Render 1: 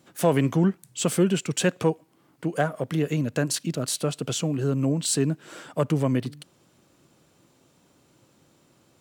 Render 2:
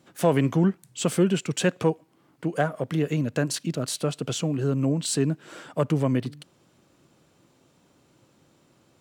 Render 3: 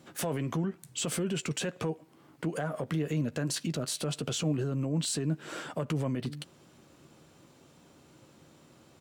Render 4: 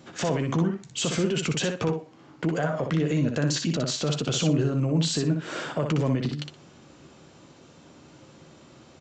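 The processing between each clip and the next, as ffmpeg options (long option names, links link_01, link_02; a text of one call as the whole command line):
ffmpeg -i in.wav -af "highshelf=frequency=6900:gain=-5.5" out.wav
ffmpeg -i in.wav -filter_complex "[0:a]acompressor=threshold=-24dB:ratio=6,alimiter=level_in=2.5dB:limit=-24dB:level=0:latency=1:release=54,volume=-2.5dB,asplit=2[link_01][link_02];[link_02]adelay=13,volume=-12dB[link_03];[link_01][link_03]amix=inputs=2:normalize=0,volume=3dB" out.wav
ffmpeg -i in.wav -filter_complex "[0:a]asplit=2[link_01][link_02];[link_02]aecho=0:1:61|122|183:0.531|0.0956|0.0172[link_03];[link_01][link_03]amix=inputs=2:normalize=0,aresample=16000,aresample=44100,volume=6dB" out.wav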